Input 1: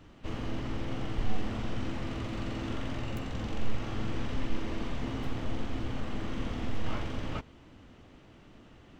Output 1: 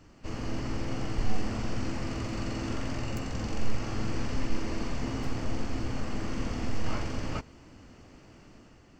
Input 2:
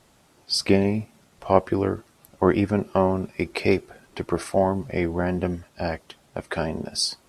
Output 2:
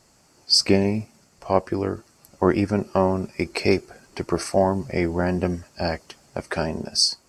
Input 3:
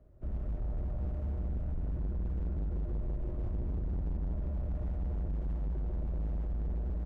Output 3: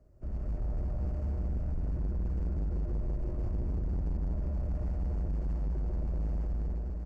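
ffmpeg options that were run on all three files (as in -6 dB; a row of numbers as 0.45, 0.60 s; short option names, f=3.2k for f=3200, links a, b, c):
-af "superequalizer=13b=0.562:14b=2.24:15b=2.24,dynaudnorm=f=100:g=9:m=3.5dB,volume=-1.5dB"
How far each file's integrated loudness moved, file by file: +2.0, +1.5, +2.0 LU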